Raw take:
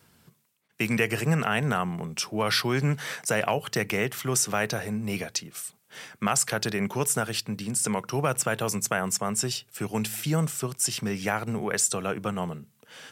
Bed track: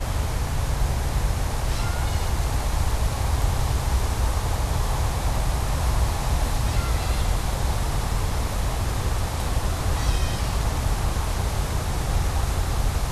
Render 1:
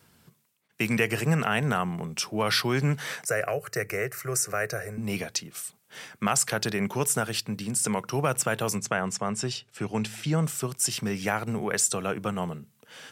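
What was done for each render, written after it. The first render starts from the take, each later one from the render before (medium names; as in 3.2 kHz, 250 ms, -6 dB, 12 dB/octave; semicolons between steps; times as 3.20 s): 3.26–4.98 s: static phaser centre 900 Hz, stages 6; 8.78–10.45 s: distance through air 67 m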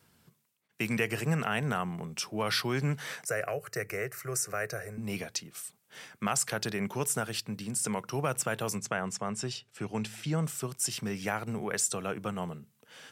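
trim -5 dB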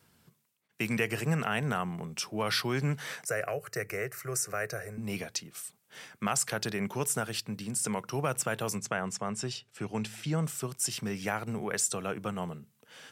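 no audible change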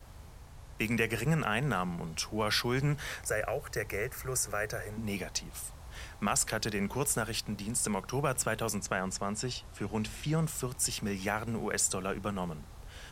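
add bed track -25.5 dB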